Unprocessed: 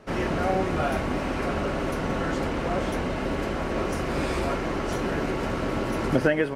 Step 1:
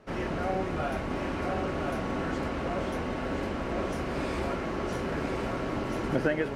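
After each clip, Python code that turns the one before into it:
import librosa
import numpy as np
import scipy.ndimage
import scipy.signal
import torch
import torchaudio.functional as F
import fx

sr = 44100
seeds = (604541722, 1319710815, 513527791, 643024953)

y = fx.high_shelf(x, sr, hz=6700.0, db=-5.0)
y = y + 10.0 ** (-5.0 / 20.0) * np.pad(y, (int(1024 * sr / 1000.0), 0))[:len(y)]
y = y * librosa.db_to_amplitude(-5.5)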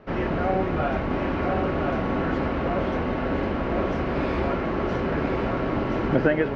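y = fx.air_absorb(x, sr, metres=230.0)
y = y * librosa.db_to_amplitude(7.0)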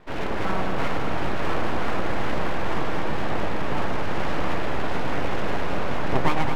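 y = np.abs(x)
y = fx.echo_alternate(y, sr, ms=107, hz=900.0, feedback_pct=84, wet_db=-6.0)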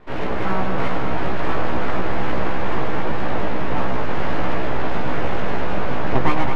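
y = fx.lowpass(x, sr, hz=3200.0, slope=6)
y = fx.doubler(y, sr, ms=16.0, db=-4.0)
y = y * librosa.db_to_amplitude(2.0)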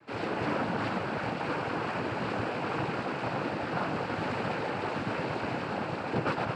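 y = fx.rider(x, sr, range_db=10, speed_s=2.0)
y = fx.noise_vocoder(y, sr, seeds[0], bands=8)
y = y * librosa.db_to_amplitude(-7.0)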